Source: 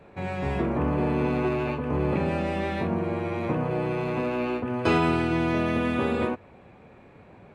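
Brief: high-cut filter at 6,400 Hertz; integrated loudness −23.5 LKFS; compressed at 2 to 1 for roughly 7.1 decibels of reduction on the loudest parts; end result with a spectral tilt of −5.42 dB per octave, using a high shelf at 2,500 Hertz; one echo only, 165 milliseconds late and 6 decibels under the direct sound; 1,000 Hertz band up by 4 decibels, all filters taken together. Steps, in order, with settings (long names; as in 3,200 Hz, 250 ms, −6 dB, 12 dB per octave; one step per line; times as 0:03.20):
low-pass filter 6,400 Hz
parametric band 1,000 Hz +4 dB
high-shelf EQ 2,500 Hz +6.5 dB
downward compressor 2 to 1, threshold −29 dBFS
single-tap delay 165 ms −6 dB
level +5.5 dB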